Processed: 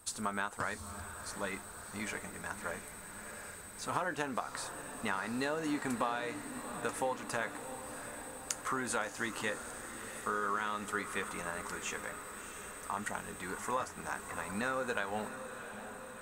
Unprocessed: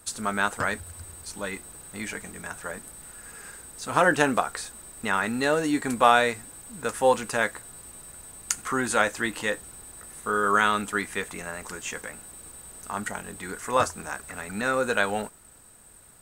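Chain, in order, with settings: bell 1000 Hz +4.5 dB 0.77 oct; compressor 10:1, threshold -25 dBFS, peak gain reduction 15.5 dB; on a send: diffused feedback echo 0.688 s, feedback 68%, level -10.5 dB; on the sum: gain -6 dB

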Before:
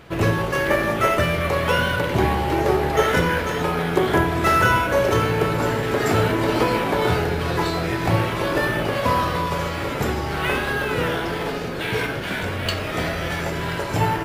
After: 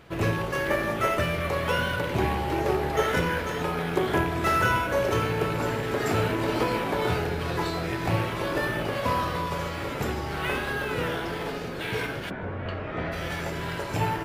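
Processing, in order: rattling part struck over -21 dBFS, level -22 dBFS; 12.29–13.11 LPF 1100 Hz -> 2300 Hz 12 dB/oct; gain -6 dB

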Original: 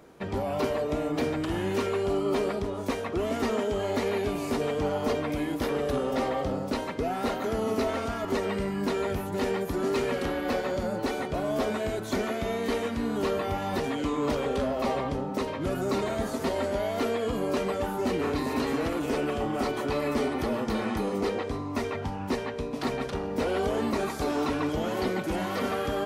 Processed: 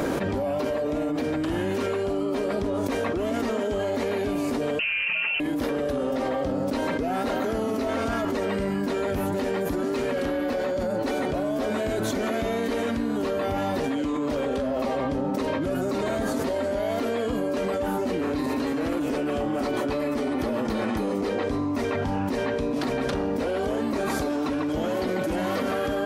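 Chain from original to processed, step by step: small resonant body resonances 280/560/1600 Hz, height 7 dB; 4.79–5.4 inverted band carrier 3000 Hz; fast leveller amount 100%; gain -6 dB

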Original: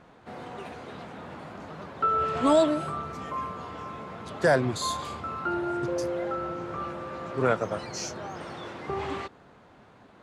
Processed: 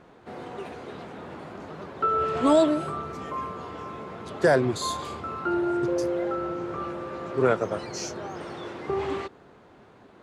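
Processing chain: bell 380 Hz +6 dB 0.66 oct

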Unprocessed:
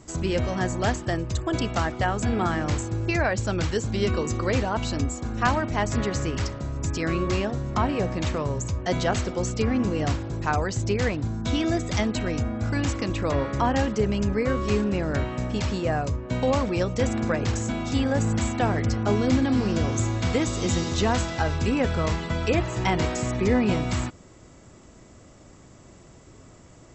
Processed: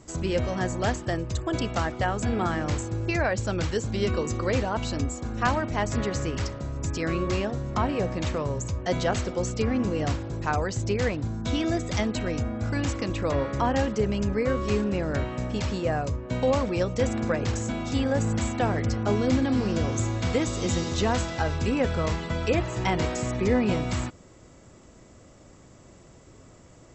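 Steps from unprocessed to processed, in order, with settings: bell 520 Hz +3 dB 0.33 oct; gain -2 dB

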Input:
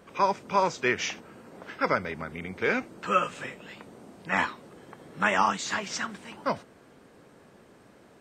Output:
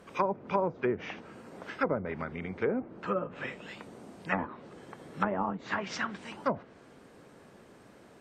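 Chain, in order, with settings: treble ducked by the level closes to 570 Hz, closed at -22.5 dBFS; 2.23–3.16 high shelf 3600 Hz -> 2400 Hz -11.5 dB

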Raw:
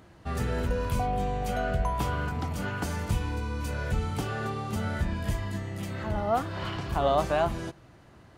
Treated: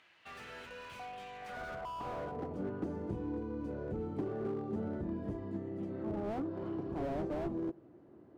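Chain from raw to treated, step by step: in parallel at -5 dB: hard clip -23.5 dBFS, distortion -14 dB; on the sum: dynamic EQ 2400 Hz, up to -6 dB, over -42 dBFS, Q 0.84; band-pass sweep 2600 Hz -> 340 Hz, 1.29–2.63; slew limiter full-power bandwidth 8.9 Hz

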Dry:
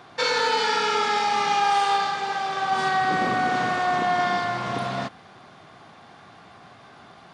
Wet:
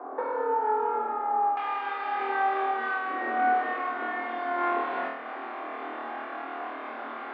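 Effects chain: LPF 1100 Hz 24 dB/oct, from 1.57 s 2400 Hz; compressor 16:1, threshold -37 dBFS, peak gain reduction 19.5 dB; steep high-pass 240 Hz 96 dB/oct; flutter echo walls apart 4.4 m, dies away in 0.8 s; gain +8 dB

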